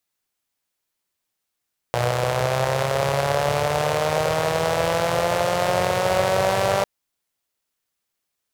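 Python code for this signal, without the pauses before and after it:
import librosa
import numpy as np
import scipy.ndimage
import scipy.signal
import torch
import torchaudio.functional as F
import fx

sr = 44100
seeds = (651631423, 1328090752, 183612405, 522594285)

y = fx.engine_four_rev(sr, seeds[0], length_s=4.9, rpm=3600, resonances_hz=(120.0, 560.0), end_rpm=5900)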